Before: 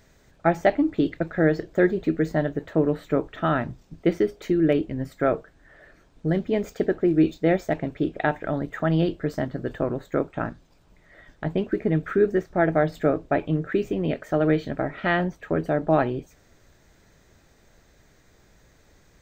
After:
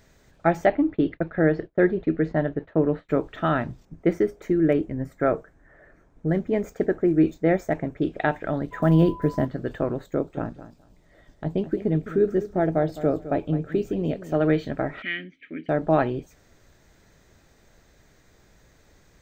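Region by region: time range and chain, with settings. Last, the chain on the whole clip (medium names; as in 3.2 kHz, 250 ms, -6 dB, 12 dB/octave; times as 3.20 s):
0.66–3.09 s: expander -36 dBFS + low-pass 2.6 kHz
3.85–8.02 s: high-order bell 3.6 kHz -8 dB 1.1 oct + tape noise reduction on one side only decoder only
8.71–9.45 s: block-companded coder 7-bit + tilt shelf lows +5 dB, about 900 Hz + whistle 1 kHz -38 dBFS
10.06–14.35 s: peaking EQ 1.8 kHz -9.5 dB 1.7 oct + feedback delay 210 ms, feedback 18%, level -14 dB
15.02–15.69 s: vowel filter i + peaking EQ 2.3 kHz +13 dB 1.7 oct
whole clip: none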